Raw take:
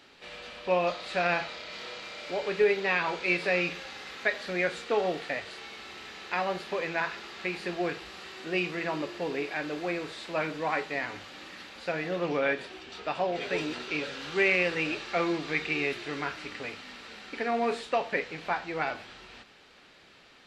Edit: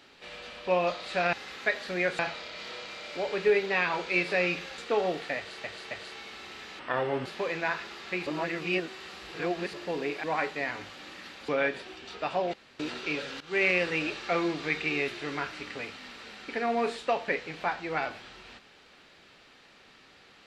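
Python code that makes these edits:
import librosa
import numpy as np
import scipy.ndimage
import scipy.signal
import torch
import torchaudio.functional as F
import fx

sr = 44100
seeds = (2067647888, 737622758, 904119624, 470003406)

y = fx.edit(x, sr, fx.move(start_s=3.92, length_s=0.86, to_s=1.33),
    fx.repeat(start_s=5.37, length_s=0.27, count=3),
    fx.speed_span(start_s=6.25, length_s=0.33, speed=0.71),
    fx.reverse_span(start_s=7.59, length_s=1.47),
    fx.cut(start_s=9.56, length_s=1.02),
    fx.cut(start_s=11.83, length_s=0.5),
    fx.room_tone_fill(start_s=13.38, length_s=0.26),
    fx.fade_in_from(start_s=14.25, length_s=0.25, floor_db=-19.0), tone=tone)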